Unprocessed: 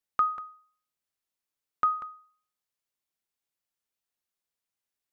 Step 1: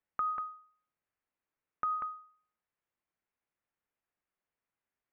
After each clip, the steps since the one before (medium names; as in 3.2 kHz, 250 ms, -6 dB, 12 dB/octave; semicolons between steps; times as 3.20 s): low-pass 2.3 kHz 24 dB/octave; peak limiter -26.5 dBFS, peak gain reduction 10.5 dB; compression, threshold -34 dBFS, peak gain reduction 5.5 dB; trim +3.5 dB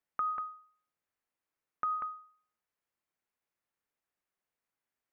bass shelf 160 Hz -4 dB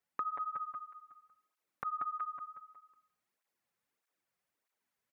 feedback delay 183 ms, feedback 43%, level -4 dB; compression, threshold -37 dBFS, peak gain reduction 7.5 dB; cancelling through-zero flanger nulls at 1.6 Hz, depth 3.6 ms; trim +4.5 dB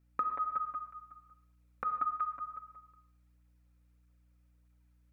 small resonant body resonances 250/510/1300/2400 Hz, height 7 dB, ringing for 25 ms; hum 60 Hz, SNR 29 dB; reverberation, pre-delay 3 ms, DRR 8.5 dB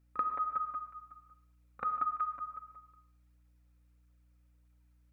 pre-echo 36 ms -15 dB